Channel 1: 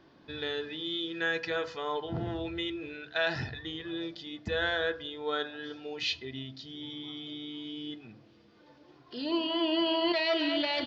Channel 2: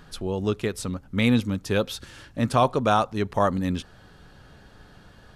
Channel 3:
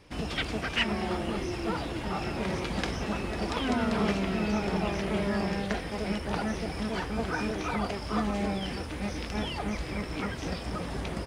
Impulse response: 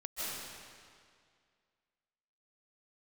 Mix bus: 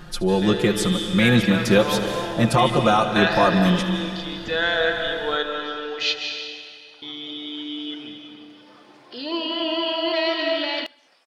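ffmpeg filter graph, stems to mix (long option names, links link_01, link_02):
-filter_complex "[0:a]highpass=frequency=460:poles=1,dynaudnorm=framelen=280:gausssize=13:maxgain=4.5dB,volume=1.5dB,asplit=3[link_01][link_02][link_03];[link_01]atrim=end=6.16,asetpts=PTS-STARTPTS,afade=type=out:start_time=6.156:duration=0.004:curve=hsin[link_04];[link_02]atrim=start=6.16:end=7.02,asetpts=PTS-STARTPTS,volume=0[link_05];[link_03]atrim=start=7.02,asetpts=PTS-STARTPTS,afade=type=in:duration=0.004:curve=hsin[link_06];[link_04][link_05][link_06]concat=n=3:v=0:a=1,asplit=3[link_07][link_08][link_09];[link_08]volume=-3dB[link_10];[link_09]volume=-21.5dB[link_11];[1:a]aecho=1:1:5.7:0.99,alimiter=limit=-12dB:level=0:latency=1:release=210,volume=3dB,asplit=3[link_12][link_13][link_14];[link_13]volume=-9dB[link_15];[link_14]volume=-16.5dB[link_16];[2:a]highpass=850,tremolo=f=0.84:d=0.44,adelay=600,volume=-18.5dB[link_17];[3:a]atrim=start_sample=2205[link_18];[link_10][link_15]amix=inputs=2:normalize=0[link_19];[link_19][link_18]afir=irnorm=-1:irlink=0[link_20];[link_11][link_16]amix=inputs=2:normalize=0,aecho=0:1:74|148|222|296|370|444|518|592|666|740:1|0.6|0.36|0.216|0.13|0.0778|0.0467|0.028|0.0168|0.0101[link_21];[link_07][link_12][link_17][link_20][link_21]amix=inputs=5:normalize=0"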